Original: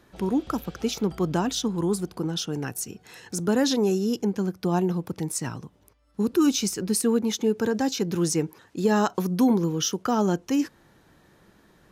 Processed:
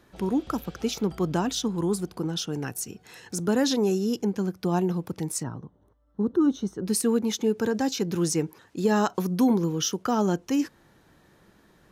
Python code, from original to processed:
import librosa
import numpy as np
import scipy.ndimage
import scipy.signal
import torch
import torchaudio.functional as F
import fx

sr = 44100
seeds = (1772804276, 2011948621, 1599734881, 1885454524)

y = fx.moving_average(x, sr, points=18, at=(5.42, 6.85), fade=0.02)
y = F.gain(torch.from_numpy(y), -1.0).numpy()